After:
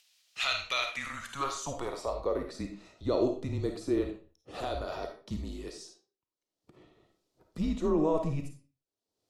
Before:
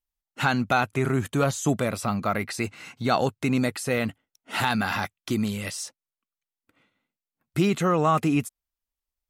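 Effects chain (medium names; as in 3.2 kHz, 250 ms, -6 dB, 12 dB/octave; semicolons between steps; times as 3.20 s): resonant high shelf 3.2 kHz +12.5 dB, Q 1.5; upward compressor, threshold -30 dBFS; band-pass sweep 2.5 kHz -> 520 Hz, 0.87–2.45 s; frequency shift -150 Hz; on a send: reverberation RT60 0.40 s, pre-delay 10 ms, DRR 4 dB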